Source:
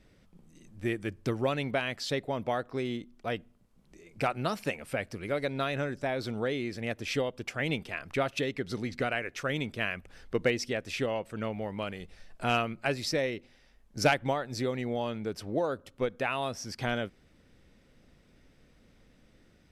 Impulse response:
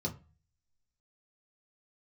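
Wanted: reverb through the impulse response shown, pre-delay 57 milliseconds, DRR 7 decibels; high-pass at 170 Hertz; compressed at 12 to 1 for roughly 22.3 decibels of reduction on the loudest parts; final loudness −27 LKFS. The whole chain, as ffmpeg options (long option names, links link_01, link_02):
-filter_complex "[0:a]highpass=170,acompressor=threshold=-42dB:ratio=12,asplit=2[link_01][link_02];[1:a]atrim=start_sample=2205,adelay=57[link_03];[link_02][link_03]afir=irnorm=-1:irlink=0,volume=-9dB[link_04];[link_01][link_04]amix=inputs=2:normalize=0,volume=18dB"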